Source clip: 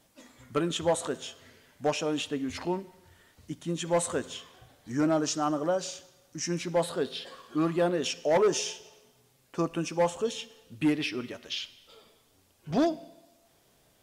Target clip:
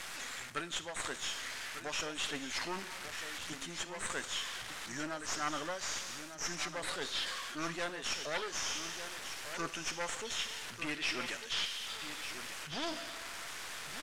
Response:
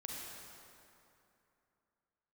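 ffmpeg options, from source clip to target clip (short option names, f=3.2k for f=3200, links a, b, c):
-filter_complex "[0:a]aeval=exprs='val(0)+0.5*0.00473*sgn(val(0))':c=same,acrossover=split=940[a][b];[b]crystalizer=i=5:c=0[c];[a][c]amix=inputs=2:normalize=0,highshelf=f=3.9k:g=10,areverse,acompressor=threshold=-36dB:ratio=6,areverse,aeval=exprs='clip(val(0),-1,0.00631)':c=same,lowpass=6.9k,equalizer=f=1.7k:w=0.68:g=12,aecho=1:1:1197:0.316,volume=-1dB"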